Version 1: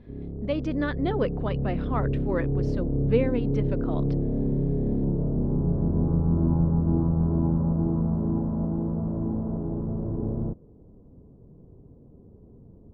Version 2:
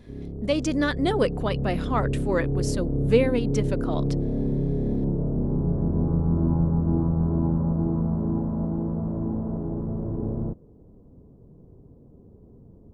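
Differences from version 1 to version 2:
speech +3.0 dB; master: remove distance through air 300 m

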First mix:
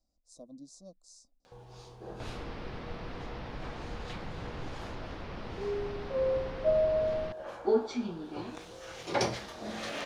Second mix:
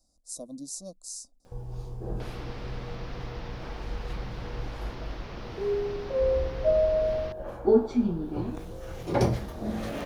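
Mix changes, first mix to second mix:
speech +8.0 dB; first sound: add tilt EQ -4.5 dB/octave; master: remove distance through air 110 m

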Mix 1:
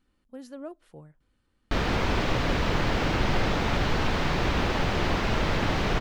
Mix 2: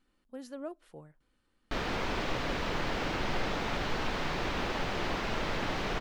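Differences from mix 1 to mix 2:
background -5.5 dB; master: add peaking EQ 73 Hz -8 dB 2.6 oct

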